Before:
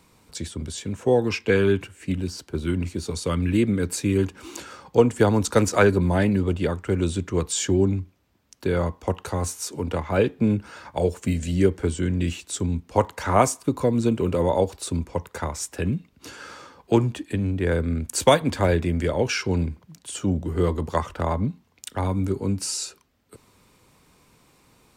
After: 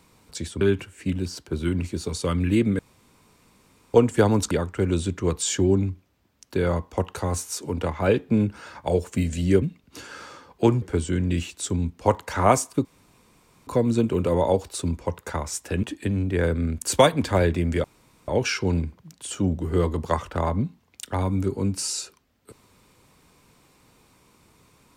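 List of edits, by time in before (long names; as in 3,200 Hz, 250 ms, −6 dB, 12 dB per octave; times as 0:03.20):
0:00.61–0:01.63: remove
0:03.81–0:04.96: fill with room tone
0:05.53–0:06.61: remove
0:13.75: splice in room tone 0.82 s
0:15.91–0:17.11: move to 0:11.72
0:19.12: splice in room tone 0.44 s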